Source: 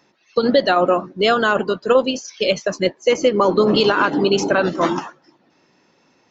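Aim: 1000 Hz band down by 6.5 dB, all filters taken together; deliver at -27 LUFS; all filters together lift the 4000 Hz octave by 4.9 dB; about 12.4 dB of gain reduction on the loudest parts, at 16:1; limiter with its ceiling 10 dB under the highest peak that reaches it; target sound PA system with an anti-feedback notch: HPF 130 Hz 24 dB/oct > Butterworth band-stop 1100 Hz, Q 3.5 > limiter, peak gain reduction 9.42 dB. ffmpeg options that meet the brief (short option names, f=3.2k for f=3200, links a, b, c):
-af "equalizer=f=1k:t=o:g=-6.5,equalizer=f=4k:t=o:g=7,acompressor=threshold=-23dB:ratio=16,alimiter=limit=-21dB:level=0:latency=1,highpass=f=130:w=0.5412,highpass=f=130:w=1.3066,asuperstop=centerf=1100:order=8:qfactor=3.5,volume=10.5dB,alimiter=limit=-18.5dB:level=0:latency=1"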